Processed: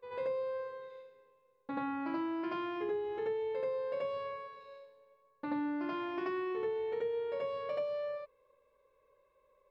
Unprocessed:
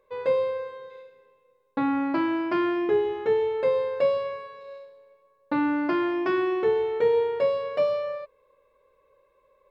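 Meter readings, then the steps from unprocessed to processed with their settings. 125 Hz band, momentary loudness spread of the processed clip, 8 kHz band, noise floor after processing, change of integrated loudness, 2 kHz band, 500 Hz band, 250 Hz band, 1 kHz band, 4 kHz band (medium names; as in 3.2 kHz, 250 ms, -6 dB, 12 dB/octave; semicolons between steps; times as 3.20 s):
-11.5 dB, 13 LU, no reading, -72 dBFS, -11.5 dB, -12.0 dB, -11.5 dB, -11.5 dB, -9.5 dB, -10.5 dB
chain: on a send: reverse echo 82 ms -6 dB; on the sum: compression 5:1, threshold -26 dBFS, peak gain reduction 10 dB; trim -7.5 dB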